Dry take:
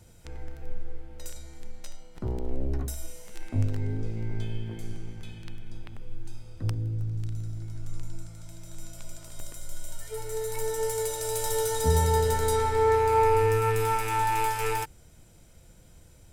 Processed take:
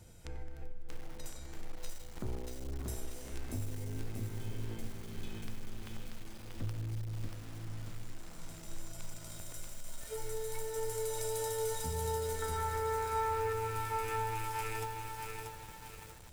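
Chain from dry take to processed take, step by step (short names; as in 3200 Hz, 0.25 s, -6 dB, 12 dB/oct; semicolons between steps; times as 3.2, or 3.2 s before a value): 12.42–13.53 bell 1400 Hz +11 dB 1.4 oct; compressor 5:1, threshold -34 dBFS, peak gain reduction 18 dB; lo-fi delay 0.635 s, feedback 55%, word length 8-bit, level -3 dB; gain -2 dB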